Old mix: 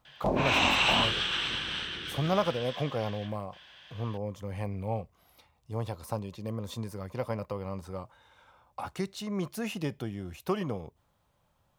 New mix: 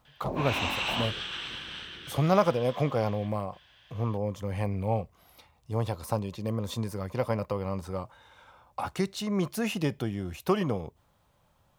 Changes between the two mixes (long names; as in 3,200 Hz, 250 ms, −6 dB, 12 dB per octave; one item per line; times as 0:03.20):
speech +4.5 dB
background −6.0 dB